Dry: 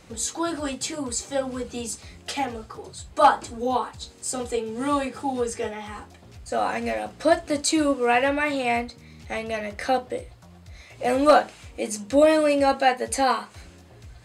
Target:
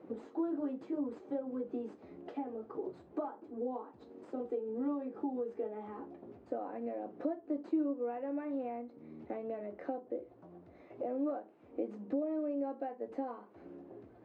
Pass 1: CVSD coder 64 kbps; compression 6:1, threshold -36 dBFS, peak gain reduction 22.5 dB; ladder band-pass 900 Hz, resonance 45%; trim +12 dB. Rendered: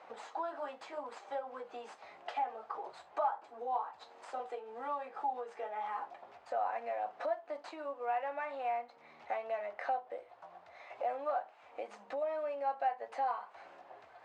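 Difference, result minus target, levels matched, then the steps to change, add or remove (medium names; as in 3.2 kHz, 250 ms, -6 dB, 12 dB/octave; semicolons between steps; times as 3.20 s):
1 kHz band +10.0 dB
change: ladder band-pass 370 Hz, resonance 45%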